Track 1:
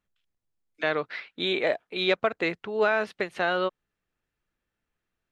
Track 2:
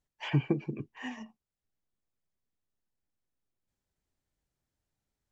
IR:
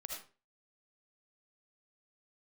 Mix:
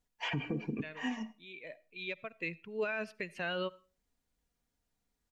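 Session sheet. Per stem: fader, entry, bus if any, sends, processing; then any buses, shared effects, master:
0:00.61 −6 dB → 0:01.33 −18 dB → 0:02.13 −18 dB → 0:02.90 −5 dB, 0.00 s, send −18.5 dB, spectral dynamics exaggerated over time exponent 1.5; thirty-one-band graphic EQ 160 Hz +9 dB, 800 Hz −11 dB, 1,250 Hz −5 dB, 2,500 Hz +11 dB; floating-point word with a short mantissa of 8 bits; automatic ducking −21 dB, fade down 1.95 s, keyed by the second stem
+0.5 dB, 0.00 s, send −14 dB, comb filter 4.2 ms, depth 54%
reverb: on, RT60 0.35 s, pre-delay 35 ms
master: brickwall limiter −25.5 dBFS, peak gain reduction 10.5 dB

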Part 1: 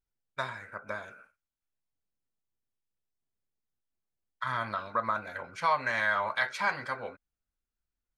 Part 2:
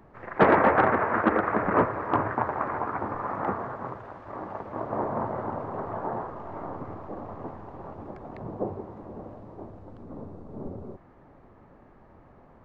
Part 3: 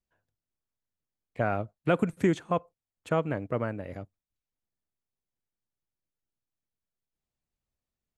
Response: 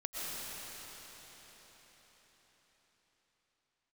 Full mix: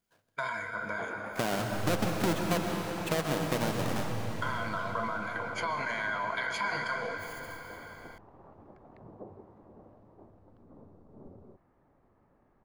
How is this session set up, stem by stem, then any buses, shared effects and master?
0.0 dB, 0.00 s, bus A, send −7.5 dB, downward compressor 4 to 1, threshold −37 dBFS, peak gain reduction 13 dB; EQ curve with evenly spaced ripples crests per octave 1.8, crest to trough 13 dB; level that may fall only so fast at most 32 dB per second
−13.5 dB, 0.60 s, no bus, no send, downward compressor, threshold −27 dBFS, peak gain reduction 13 dB
+2.0 dB, 0.00 s, bus A, send −10.5 dB, each half-wave held at its own peak; brickwall limiter −18.5 dBFS, peak gain reduction 6 dB
bus A: 0.0 dB, high-pass filter 98 Hz 24 dB per octave; downward compressor, threshold −30 dBFS, peak gain reduction 13 dB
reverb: on, RT60 5.2 s, pre-delay 80 ms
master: no processing

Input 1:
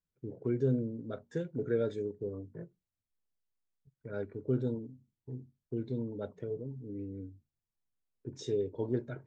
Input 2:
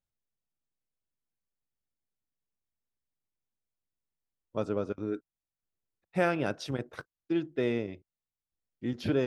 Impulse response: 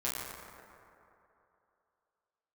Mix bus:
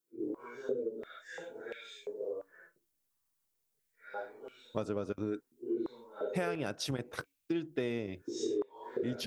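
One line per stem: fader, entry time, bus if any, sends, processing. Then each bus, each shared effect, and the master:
0.0 dB, 0.00 s, no send, random phases in long frames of 200 ms; high-pass on a step sequencer 2.9 Hz 330–2,500 Hz
+2.5 dB, 0.20 s, no send, no processing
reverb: not used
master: high-shelf EQ 6,100 Hz +11.5 dB; downward compressor 6 to 1, threshold −31 dBFS, peak gain reduction 12.5 dB

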